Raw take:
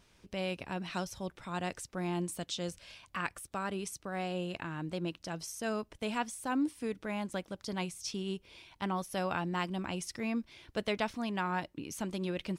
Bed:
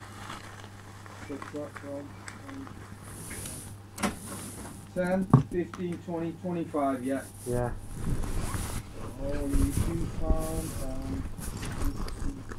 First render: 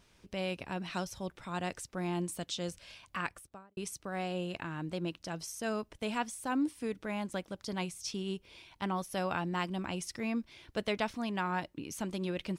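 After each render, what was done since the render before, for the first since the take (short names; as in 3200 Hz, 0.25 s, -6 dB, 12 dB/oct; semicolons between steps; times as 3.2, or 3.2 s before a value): 3.2–3.77 studio fade out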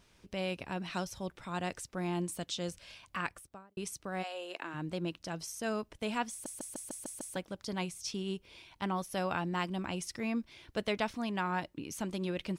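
4.22–4.73 HPF 700 Hz -> 240 Hz 24 dB/oct; 6.31 stutter in place 0.15 s, 7 plays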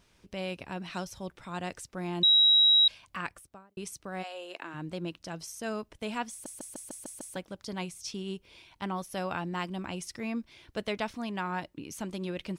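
2.23–2.88 bleep 3850 Hz -17.5 dBFS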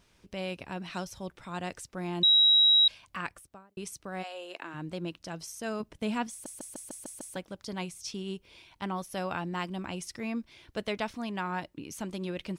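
5.8–6.27 bell 180 Hz +7 dB 1.7 oct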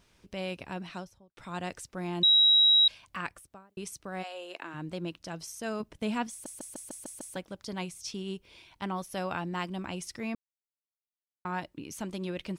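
0.74–1.37 studio fade out; 10.35–11.45 mute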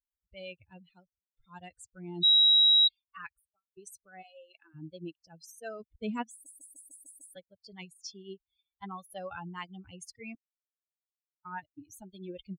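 per-bin expansion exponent 3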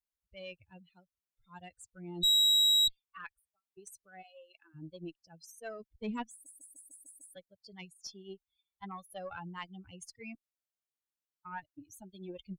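tube stage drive 22 dB, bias 0.5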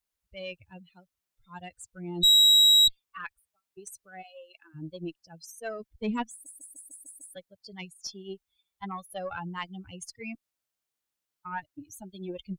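gain +7 dB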